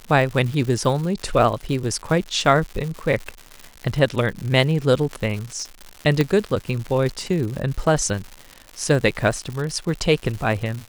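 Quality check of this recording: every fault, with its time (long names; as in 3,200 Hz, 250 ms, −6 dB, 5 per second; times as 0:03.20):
surface crackle 200 per second −28 dBFS
0:06.21: click −7 dBFS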